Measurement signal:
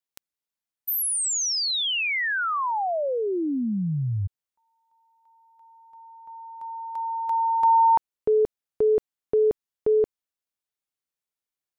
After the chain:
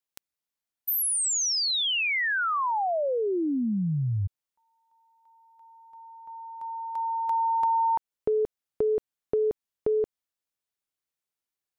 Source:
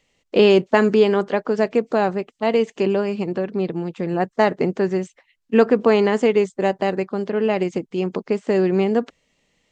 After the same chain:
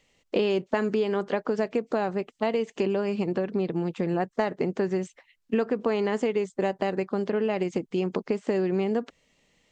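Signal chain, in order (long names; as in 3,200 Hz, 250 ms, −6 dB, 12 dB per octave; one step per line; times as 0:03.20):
downward compressor 5 to 1, threshold −23 dBFS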